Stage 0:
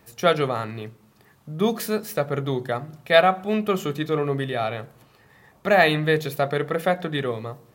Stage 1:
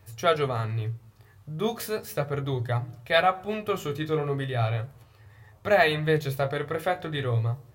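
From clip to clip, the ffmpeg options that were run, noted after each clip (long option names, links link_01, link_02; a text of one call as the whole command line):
ffmpeg -i in.wav -af "lowshelf=frequency=140:width_type=q:width=3:gain=9,flanger=delay=9.4:depth=9.8:regen=37:speed=0.36:shape=sinusoidal" out.wav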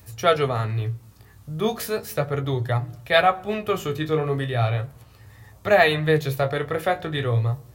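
ffmpeg -i in.wav -filter_complex "[0:a]acrossover=split=370|790|4500[link_01][link_02][link_03][link_04];[link_04]acompressor=mode=upward:threshold=-57dB:ratio=2.5[link_05];[link_01][link_02][link_03][link_05]amix=inputs=4:normalize=0,aeval=exprs='val(0)+0.00112*(sin(2*PI*60*n/s)+sin(2*PI*2*60*n/s)/2+sin(2*PI*3*60*n/s)/3+sin(2*PI*4*60*n/s)/4+sin(2*PI*5*60*n/s)/5)':channel_layout=same,volume=4dB" out.wav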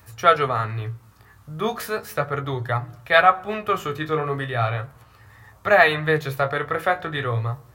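ffmpeg -i in.wav -af "equalizer=frequency=1300:width_type=o:width=1.5:gain=10.5,volume=-3.5dB" out.wav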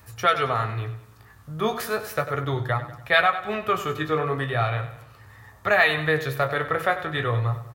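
ffmpeg -i in.wav -filter_complex "[0:a]acrossover=split=1600[link_01][link_02];[link_01]alimiter=limit=-14dB:level=0:latency=1:release=273[link_03];[link_03][link_02]amix=inputs=2:normalize=0,aecho=1:1:96|192|288|384:0.237|0.104|0.0459|0.0202" out.wav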